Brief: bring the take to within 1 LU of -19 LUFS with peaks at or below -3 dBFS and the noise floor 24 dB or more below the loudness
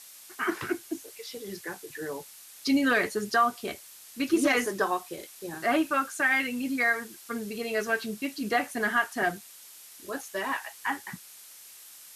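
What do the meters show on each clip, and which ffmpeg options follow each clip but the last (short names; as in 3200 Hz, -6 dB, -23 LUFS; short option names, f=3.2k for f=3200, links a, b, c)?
noise floor -50 dBFS; noise floor target -53 dBFS; loudness -29.0 LUFS; peak -13.5 dBFS; loudness target -19.0 LUFS
-> -af "afftdn=nr=6:nf=-50"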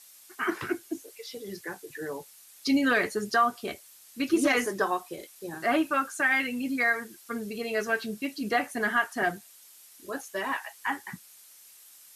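noise floor -54 dBFS; loudness -29.0 LUFS; peak -13.5 dBFS; loudness target -19.0 LUFS
-> -af "volume=10dB"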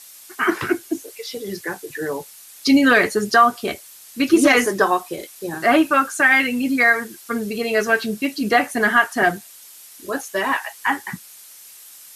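loudness -19.0 LUFS; peak -3.5 dBFS; noise floor -44 dBFS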